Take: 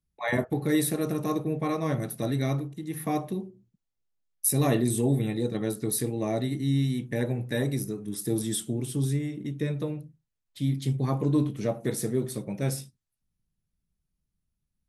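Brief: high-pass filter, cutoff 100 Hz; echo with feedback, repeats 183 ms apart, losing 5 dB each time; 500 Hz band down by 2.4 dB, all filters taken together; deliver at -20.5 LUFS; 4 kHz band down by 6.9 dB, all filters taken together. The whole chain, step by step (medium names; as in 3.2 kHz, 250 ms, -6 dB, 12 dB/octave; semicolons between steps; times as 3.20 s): high-pass 100 Hz; peaking EQ 500 Hz -3 dB; peaking EQ 4 kHz -8 dB; feedback delay 183 ms, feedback 56%, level -5 dB; trim +8 dB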